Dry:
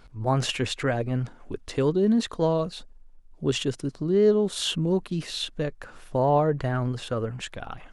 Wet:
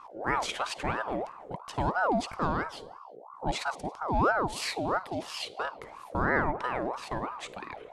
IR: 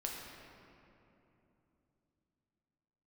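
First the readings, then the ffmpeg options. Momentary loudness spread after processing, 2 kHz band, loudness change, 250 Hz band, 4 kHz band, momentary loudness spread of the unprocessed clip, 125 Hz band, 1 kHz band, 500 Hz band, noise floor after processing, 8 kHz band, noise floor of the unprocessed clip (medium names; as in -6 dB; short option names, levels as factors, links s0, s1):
13 LU, +4.5 dB, -5.5 dB, -9.0 dB, -7.5 dB, 11 LU, -11.0 dB, +2.0 dB, -9.0 dB, -49 dBFS, -6.0 dB, -50 dBFS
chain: -filter_complex "[0:a]aeval=exprs='val(0)+0.00708*(sin(2*PI*60*n/s)+sin(2*PI*2*60*n/s)/2+sin(2*PI*3*60*n/s)/3+sin(2*PI*4*60*n/s)/4+sin(2*PI*5*60*n/s)/5)':c=same,asplit=2[s0][s1];[1:a]atrim=start_sample=2205,afade=t=out:st=0.35:d=0.01,atrim=end_sample=15876,adelay=53[s2];[s1][s2]afir=irnorm=-1:irlink=0,volume=0.141[s3];[s0][s3]amix=inputs=2:normalize=0,aeval=exprs='val(0)*sin(2*PI*780*n/s+780*0.45/3*sin(2*PI*3*n/s))':c=same,volume=0.708"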